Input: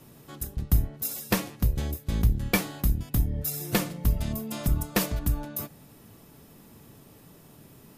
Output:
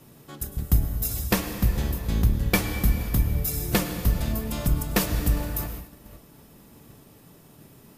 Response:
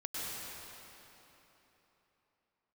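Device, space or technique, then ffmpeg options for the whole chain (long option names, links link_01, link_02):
keyed gated reverb: -filter_complex "[0:a]asplit=3[link_01][link_02][link_03];[1:a]atrim=start_sample=2205[link_04];[link_02][link_04]afir=irnorm=-1:irlink=0[link_05];[link_03]apad=whole_len=351816[link_06];[link_05][link_06]sidechaingate=range=-33dB:threshold=-49dB:ratio=16:detection=peak,volume=-7.5dB[link_07];[link_01][link_07]amix=inputs=2:normalize=0"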